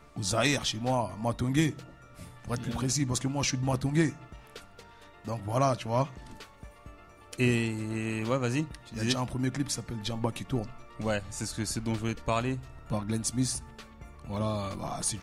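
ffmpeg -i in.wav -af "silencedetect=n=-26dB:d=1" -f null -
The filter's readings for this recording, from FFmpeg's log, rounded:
silence_start: 4.09
silence_end: 5.28 | silence_duration: 1.19
silence_start: 6.03
silence_end: 7.33 | silence_duration: 1.30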